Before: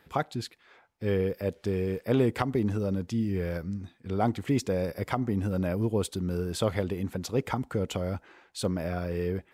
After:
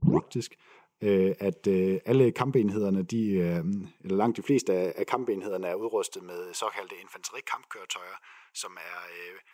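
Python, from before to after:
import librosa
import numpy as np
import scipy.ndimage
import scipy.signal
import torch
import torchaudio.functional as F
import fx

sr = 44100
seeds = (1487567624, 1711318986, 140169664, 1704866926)

p1 = fx.tape_start_head(x, sr, length_s=0.32)
p2 = fx.rider(p1, sr, range_db=3, speed_s=0.5)
p3 = p1 + (p2 * 10.0 ** (-3.0 / 20.0))
p4 = fx.filter_sweep_highpass(p3, sr, from_hz=170.0, to_hz=1400.0, start_s=3.85, end_s=7.44, q=1.6)
p5 = fx.ripple_eq(p4, sr, per_octave=0.73, db=9)
y = p5 * 10.0 ** (-4.0 / 20.0)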